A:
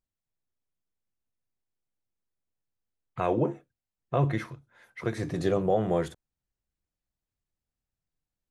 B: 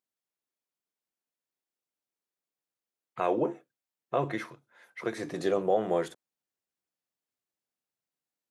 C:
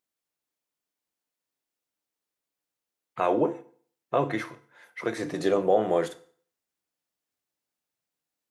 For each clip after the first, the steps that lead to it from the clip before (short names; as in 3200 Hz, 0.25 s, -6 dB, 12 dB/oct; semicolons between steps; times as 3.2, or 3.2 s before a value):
HPF 280 Hz 12 dB/oct
FDN reverb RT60 0.51 s, low-frequency decay 1×, high-frequency decay 0.9×, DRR 10.5 dB; gain +3.5 dB